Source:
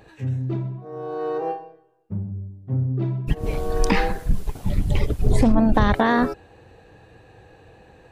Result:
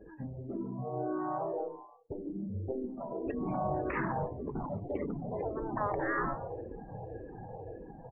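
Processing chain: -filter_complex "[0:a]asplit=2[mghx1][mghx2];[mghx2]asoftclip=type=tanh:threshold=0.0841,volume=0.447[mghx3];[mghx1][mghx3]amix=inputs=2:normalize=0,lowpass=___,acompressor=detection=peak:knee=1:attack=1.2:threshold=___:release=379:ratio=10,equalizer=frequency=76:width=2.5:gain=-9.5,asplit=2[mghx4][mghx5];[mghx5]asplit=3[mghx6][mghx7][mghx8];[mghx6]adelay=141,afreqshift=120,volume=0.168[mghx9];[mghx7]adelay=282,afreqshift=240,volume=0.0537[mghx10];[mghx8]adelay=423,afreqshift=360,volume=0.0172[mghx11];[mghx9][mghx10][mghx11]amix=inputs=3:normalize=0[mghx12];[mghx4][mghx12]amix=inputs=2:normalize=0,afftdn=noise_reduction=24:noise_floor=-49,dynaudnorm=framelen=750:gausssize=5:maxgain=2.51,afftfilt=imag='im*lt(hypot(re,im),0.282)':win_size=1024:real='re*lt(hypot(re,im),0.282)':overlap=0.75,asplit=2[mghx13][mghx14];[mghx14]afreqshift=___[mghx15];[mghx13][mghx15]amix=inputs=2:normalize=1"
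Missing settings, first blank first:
1200, 0.0794, -1.8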